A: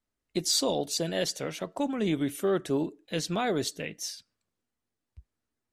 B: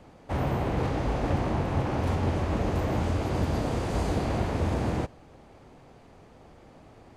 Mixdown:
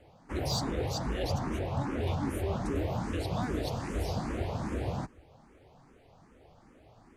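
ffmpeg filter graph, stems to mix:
ffmpeg -i stem1.wav -i stem2.wav -filter_complex "[0:a]asoftclip=type=tanh:threshold=-17.5dB,volume=-6.5dB[link_01];[1:a]volume=-3dB[link_02];[link_01][link_02]amix=inputs=2:normalize=0,asplit=2[link_03][link_04];[link_04]afreqshift=2.5[link_05];[link_03][link_05]amix=inputs=2:normalize=1" out.wav

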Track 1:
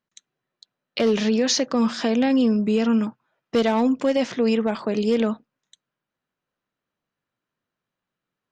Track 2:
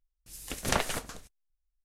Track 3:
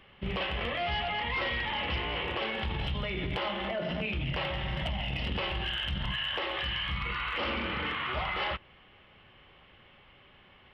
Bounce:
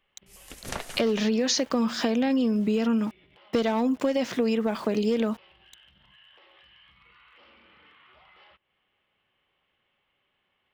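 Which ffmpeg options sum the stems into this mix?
ffmpeg -i stem1.wav -i stem2.wav -i stem3.wav -filter_complex "[0:a]aeval=exprs='val(0)*gte(abs(val(0)),0.0075)':channel_layout=same,volume=1dB[link_01];[1:a]volume=-6.5dB[link_02];[2:a]highshelf=frequency=4700:gain=6,acompressor=threshold=-40dB:ratio=2.5,lowshelf=frequency=150:gain=-10.5,volume=-17dB[link_03];[link_01][link_02][link_03]amix=inputs=3:normalize=0,acompressor=threshold=-21dB:ratio=6" out.wav

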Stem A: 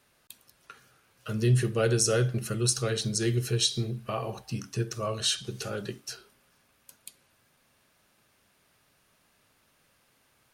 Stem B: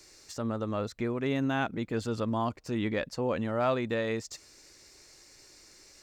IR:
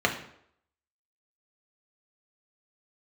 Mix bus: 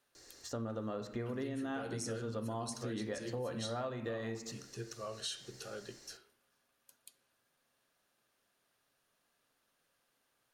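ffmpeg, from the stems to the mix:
-filter_complex "[0:a]equalizer=frequency=69:width_type=o:width=2.6:gain=-9,volume=-11.5dB,asplit=3[link_01][link_02][link_03];[link_02]volume=-23.5dB[link_04];[1:a]adelay=150,volume=-5dB,asplit=2[link_05][link_06];[link_06]volume=-13dB[link_07];[link_03]apad=whole_len=272128[link_08];[link_05][link_08]sidechaincompress=threshold=-41dB:ratio=8:attack=16:release=146[link_09];[2:a]atrim=start_sample=2205[link_10];[link_04][link_07]amix=inputs=2:normalize=0[link_11];[link_11][link_10]afir=irnorm=-1:irlink=0[link_12];[link_01][link_09][link_12]amix=inputs=3:normalize=0,acompressor=threshold=-36dB:ratio=8"

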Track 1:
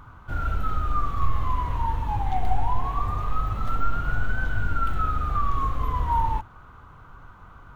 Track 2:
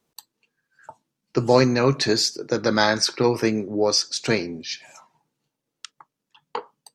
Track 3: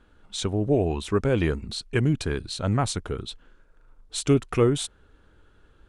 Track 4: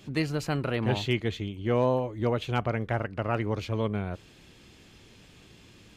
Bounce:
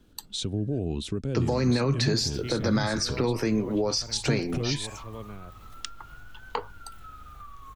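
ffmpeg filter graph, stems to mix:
ffmpeg -i stem1.wav -i stem2.wav -i stem3.wav -i stem4.wav -filter_complex "[0:a]acompressor=threshold=-31dB:ratio=2.5,crystalizer=i=6.5:c=0,adelay=2050,volume=-15dB[link_01];[1:a]volume=2.5dB,asplit=3[link_02][link_03][link_04];[link_02]atrim=end=0.79,asetpts=PTS-STARTPTS,afade=type=out:start_time=0.786:duration=0.004:curve=hsin[link_05];[link_03]atrim=start=0.79:end=1.31,asetpts=PTS-STARTPTS,volume=0[link_06];[link_04]atrim=start=1.31,asetpts=PTS-STARTPTS,afade=type=in:duration=0.004:curve=hsin[link_07];[link_05][link_06][link_07]concat=n=3:v=0:a=1[link_08];[2:a]equalizer=frequency=125:width_type=o:width=1:gain=6,equalizer=frequency=250:width_type=o:width=1:gain=6,equalizer=frequency=1000:width_type=o:width=1:gain=-9,equalizer=frequency=2000:width_type=o:width=1:gain=-6,equalizer=frequency=4000:width_type=o:width=1:gain=6,alimiter=limit=-18.5dB:level=0:latency=1:release=184,volume=-2.5dB[link_09];[3:a]adelay=1350,volume=-12dB[link_10];[link_01][link_08][link_10]amix=inputs=3:normalize=0,alimiter=limit=-10.5dB:level=0:latency=1:release=45,volume=0dB[link_11];[link_09][link_11]amix=inputs=2:normalize=0,acrossover=split=210[link_12][link_13];[link_13]acompressor=threshold=-27dB:ratio=3[link_14];[link_12][link_14]amix=inputs=2:normalize=0" out.wav

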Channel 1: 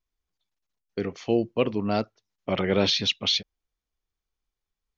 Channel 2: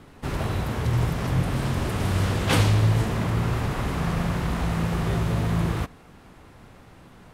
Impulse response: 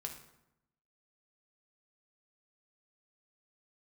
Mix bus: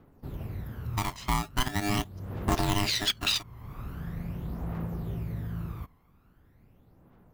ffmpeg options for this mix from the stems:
-filter_complex "[0:a]acompressor=threshold=-25dB:ratio=3,aeval=exprs='val(0)*sgn(sin(2*PI*510*n/s))':channel_layout=same,volume=-1.5dB,asplit=2[link_01][link_02];[1:a]highshelf=frequency=2200:gain=-11,aexciter=amount=11.7:drive=4.6:freq=12000,volume=-15.5dB[link_03];[link_02]apad=whole_len=323438[link_04];[link_03][link_04]sidechaincompress=threshold=-47dB:ratio=4:attack=49:release=318[link_05];[link_01][link_05]amix=inputs=2:normalize=0,aphaser=in_gain=1:out_gain=1:delay=1:decay=0.56:speed=0.42:type=triangular"

